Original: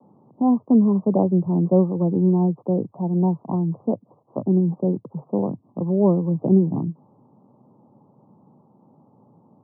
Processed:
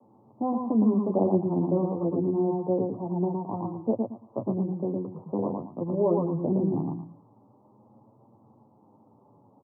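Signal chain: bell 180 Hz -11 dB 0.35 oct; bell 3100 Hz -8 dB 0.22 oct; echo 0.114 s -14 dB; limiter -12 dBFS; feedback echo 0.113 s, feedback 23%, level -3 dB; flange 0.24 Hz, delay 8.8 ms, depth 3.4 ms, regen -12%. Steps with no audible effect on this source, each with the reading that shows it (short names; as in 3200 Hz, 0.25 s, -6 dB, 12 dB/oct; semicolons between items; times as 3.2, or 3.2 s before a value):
bell 3100 Hz: input band ends at 1100 Hz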